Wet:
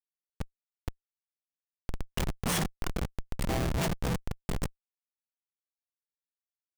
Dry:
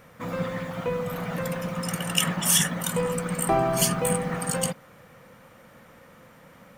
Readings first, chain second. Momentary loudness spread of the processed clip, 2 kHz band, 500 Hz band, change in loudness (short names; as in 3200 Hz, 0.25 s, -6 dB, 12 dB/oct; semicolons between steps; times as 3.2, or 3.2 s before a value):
15 LU, -9.0 dB, -12.0 dB, -8.0 dB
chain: buzz 400 Hz, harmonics 32, -47 dBFS -2 dB/oct; dynamic EQ 2500 Hz, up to -8 dB, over -48 dBFS, Q 2.7; Schmitt trigger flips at -19 dBFS